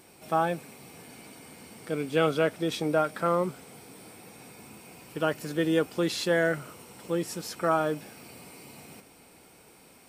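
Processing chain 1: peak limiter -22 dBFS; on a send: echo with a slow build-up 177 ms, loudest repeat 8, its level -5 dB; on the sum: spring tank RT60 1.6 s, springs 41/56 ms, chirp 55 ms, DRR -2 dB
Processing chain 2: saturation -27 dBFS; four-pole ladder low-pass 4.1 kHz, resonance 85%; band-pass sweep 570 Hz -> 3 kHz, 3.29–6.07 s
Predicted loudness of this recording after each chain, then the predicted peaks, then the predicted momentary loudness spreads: -25.0 LUFS, -48.5 LUFS; -10.5 dBFS, -29.0 dBFS; 9 LU, 24 LU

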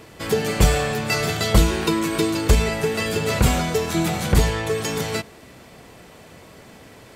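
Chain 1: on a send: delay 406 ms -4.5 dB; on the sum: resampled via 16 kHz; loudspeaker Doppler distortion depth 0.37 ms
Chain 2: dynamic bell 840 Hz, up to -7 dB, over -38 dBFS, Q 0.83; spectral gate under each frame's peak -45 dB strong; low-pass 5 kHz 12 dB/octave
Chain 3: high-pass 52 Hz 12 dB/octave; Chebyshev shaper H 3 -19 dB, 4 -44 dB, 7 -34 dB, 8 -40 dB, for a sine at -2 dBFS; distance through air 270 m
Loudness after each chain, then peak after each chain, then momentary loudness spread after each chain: -20.0 LUFS, -23.0 LUFS, -27.0 LUFS; -3.5 dBFS, -5.0 dBFS, -2.5 dBFS; 7 LU, 7 LU, 7 LU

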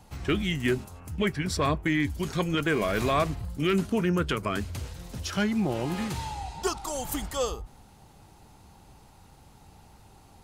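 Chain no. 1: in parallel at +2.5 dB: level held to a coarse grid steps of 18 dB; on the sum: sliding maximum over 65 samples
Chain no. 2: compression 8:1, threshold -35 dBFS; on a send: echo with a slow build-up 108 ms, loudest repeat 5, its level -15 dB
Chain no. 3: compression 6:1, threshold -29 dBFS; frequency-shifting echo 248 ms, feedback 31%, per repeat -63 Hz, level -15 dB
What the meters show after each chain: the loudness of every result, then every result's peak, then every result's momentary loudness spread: -28.0 LUFS, -38.5 LUFS, -34.0 LUFS; -13.5 dBFS, -23.5 dBFS, -18.5 dBFS; 10 LU, 15 LU, 6 LU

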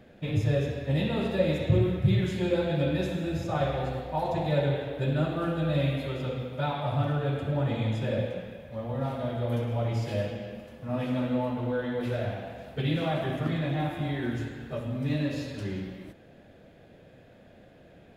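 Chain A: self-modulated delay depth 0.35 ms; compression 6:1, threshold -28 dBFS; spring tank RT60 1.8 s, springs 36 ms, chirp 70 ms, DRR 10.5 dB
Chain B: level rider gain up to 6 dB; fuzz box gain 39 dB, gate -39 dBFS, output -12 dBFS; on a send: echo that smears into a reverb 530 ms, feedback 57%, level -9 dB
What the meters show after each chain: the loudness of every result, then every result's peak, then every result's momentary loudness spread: -33.0 LUFS, -14.5 LUFS; -18.5 dBFS, -4.0 dBFS; 5 LU, 4 LU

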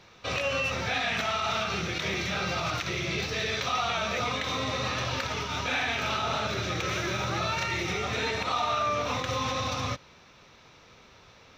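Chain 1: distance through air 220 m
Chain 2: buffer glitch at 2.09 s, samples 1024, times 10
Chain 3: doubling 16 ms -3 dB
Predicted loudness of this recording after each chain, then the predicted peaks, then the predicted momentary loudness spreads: -31.0 LUFS, -29.0 LUFS, -27.0 LUFS; -17.0 dBFS, -14.0 dBFS, -14.0 dBFS; 3 LU, 3 LU, 3 LU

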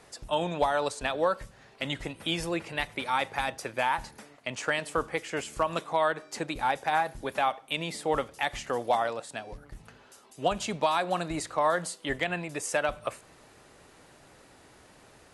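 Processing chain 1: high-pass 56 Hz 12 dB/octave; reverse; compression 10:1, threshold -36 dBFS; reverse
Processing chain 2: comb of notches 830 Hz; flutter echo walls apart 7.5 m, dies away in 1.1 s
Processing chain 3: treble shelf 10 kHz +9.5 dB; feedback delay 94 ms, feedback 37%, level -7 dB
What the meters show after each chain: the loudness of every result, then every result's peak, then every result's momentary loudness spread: -41.0 LUFS, -28.0 LUFS, -29.0 LUFS; -23.0 dBFS, -11.0 dBFS, -12.0 dBFS; 16 LU, 9 LU, 9 LU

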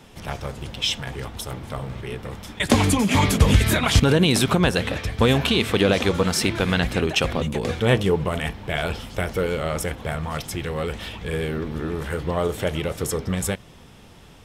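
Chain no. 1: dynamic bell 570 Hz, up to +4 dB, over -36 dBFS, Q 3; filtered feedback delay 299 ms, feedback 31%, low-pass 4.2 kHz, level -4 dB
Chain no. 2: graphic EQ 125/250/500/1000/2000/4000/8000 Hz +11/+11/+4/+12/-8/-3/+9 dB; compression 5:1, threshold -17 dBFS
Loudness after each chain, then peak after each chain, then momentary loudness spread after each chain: -20.5 LUFS, -22.0 LUFS; -3.0 dBFS, -3.0 dBFS; 14 LU, 5 LU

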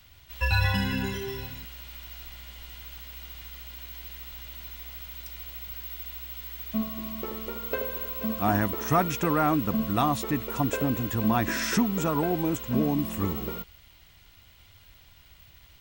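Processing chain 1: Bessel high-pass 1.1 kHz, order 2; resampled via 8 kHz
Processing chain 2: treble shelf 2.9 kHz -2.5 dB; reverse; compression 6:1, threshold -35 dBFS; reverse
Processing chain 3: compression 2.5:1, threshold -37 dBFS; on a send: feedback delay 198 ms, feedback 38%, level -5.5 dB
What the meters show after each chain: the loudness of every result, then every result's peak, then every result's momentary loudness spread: -35.5 LUFS, -39.0 LUFS, -35.5 LUFS; -17.5 dBFS, -24.5 dBFS, -21.0 dBFS; 18 LU, 17 LU, 16 LU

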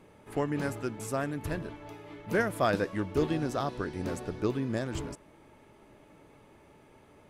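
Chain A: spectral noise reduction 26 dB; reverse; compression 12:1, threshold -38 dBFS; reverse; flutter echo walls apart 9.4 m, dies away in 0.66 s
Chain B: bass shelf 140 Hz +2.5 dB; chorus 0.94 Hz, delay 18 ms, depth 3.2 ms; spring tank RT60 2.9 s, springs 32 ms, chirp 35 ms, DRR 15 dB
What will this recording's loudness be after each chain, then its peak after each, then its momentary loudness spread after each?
-42.0 LUFS, -34.5 LUFS; -27.5 dBFS, -17.0 dBFS; 10 LU, 13 LU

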